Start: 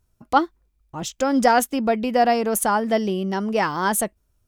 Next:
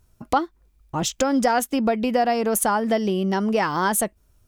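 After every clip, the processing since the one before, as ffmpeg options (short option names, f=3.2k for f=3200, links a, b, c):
-af "acompressor=threshold=-28dB:ratio=3,volume=7.5dB"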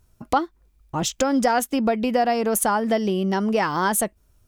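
-af anull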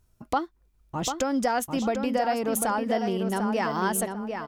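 -filter_complex "[0:a]asplit=2[a][b];[b]adelay=745,lowpass=f=3.3k:p=1,volume=-6dB,asplit=2[c][d];[d]adelay=745,lowpass=f=3.3k:p=1,volume=0.33,asplit=2[e][f];[f]adelay=745,lowpass=f=3.3k:p=1,volume=0.33,asplit=2[g][h];[h]adelay=745,lowpass=f=3.3k:p=1,volume=0.33[i];[a][c][e][g][i]amix=inputs=5:normalize=0,volume=-5.5dB"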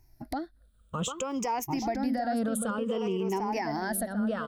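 -filter_complex "[0:a]afftfilt=real='re*pow(10,17/40*sin(2*PI*(0.74*log(max(b,1)*sr/1024/100)/log(2)-(-0.56)*(pts-256)/sr)))':imag='im*pow(10,17/40*sin(2*PI*(0.74*log(max(b,1)*sr/1024/100)/log(2)-(-0.56)*(pts-256)/sr)))':win_size=1024:overlap=0.75,acrossover=split=460[a][b];[b]acompressor=threshold=-30dB:ratio=2[c];[a][c]amix=inputs=2:normalize=0,alimiter=limit=-21.5dB:level=0:latency=1:release=164"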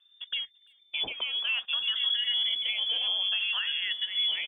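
-filter_complex "[0:a]asplit=2[a][b];[b]acrusher=bits=6:mix=0:aa=0.000001,volume=-7.5dB[c];[a][c]amix=inputs=2:normalize=0,lowpass=f=3.1k:t=q:w=0.5098,lowpass=f=3.1k:t=q:w=0.6013,lowpass=f=3.1k:t=q:w=0.9,lowpass=f=3.1k:t=q:w=2.563,afreqshift=-3600,asplit=2[d][e];[e]adelay=340,highpass=300,lowpass=3.4k,asoftclip=type=hard:threshold=-25.5dB,volume=-28dB[f];[d][f]amix=inputs=2:normalize=0,volume=-2.5dB"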